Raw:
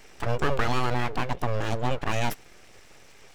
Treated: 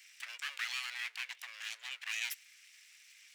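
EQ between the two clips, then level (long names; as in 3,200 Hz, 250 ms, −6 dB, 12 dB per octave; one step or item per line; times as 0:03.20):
Chebyshev high-pass filter 2,100 Hz, order 3
−2.0 dB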